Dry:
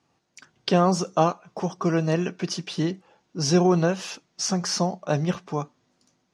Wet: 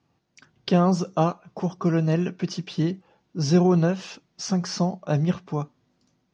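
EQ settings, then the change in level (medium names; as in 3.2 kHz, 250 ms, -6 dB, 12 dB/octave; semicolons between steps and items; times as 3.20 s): distance through air 140 m; bass shelf 250 Hz +9.5 dB; treble shelf 4.2 kHz +8.5 dB; -3.5 dB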